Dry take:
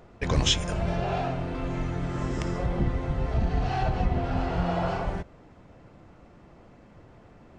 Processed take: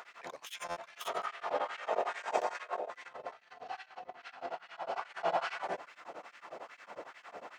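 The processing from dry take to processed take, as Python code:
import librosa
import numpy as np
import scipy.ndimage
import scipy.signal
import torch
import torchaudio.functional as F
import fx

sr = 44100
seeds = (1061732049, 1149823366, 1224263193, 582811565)

y = fx.tracing_dist(x, sr, depth_ms=0.13)
y = fx.ring_mod(y, sr, carrier_hz=550.0, at=(1.0, 2.9))
y = y + 10.0 ** (-9.0 / 20.0) * np.pad(y, (int(540 * sr / 1000.0), 0))[:len(y)]
y = fx.over_compress(y, sr, threshold_db=-37.0, ratio=-1.0)
y = fx.filter_lfo_highpass(y, sr, shape='sine', hz=2.4, low_hz=550.0, high_hz=2000.0, q=1.6)
y = fx.buffer_glitch(y, sr, at_s=(0.66,), block=512, repeats=8)
y = y * np.abs(np.cos(np.pi * 11.0 * np.arange(len(y)) / sr))
y = y * 10.0 ** (2.5 / 20.0)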